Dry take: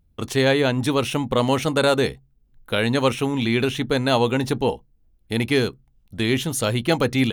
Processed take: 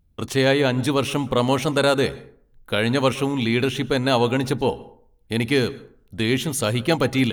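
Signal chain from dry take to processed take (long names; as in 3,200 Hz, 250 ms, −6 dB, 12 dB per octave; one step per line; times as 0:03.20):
dense smooth reverb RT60 0.56 s, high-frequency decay 0.5×, pre-delay 105 ms, DRR 19 dB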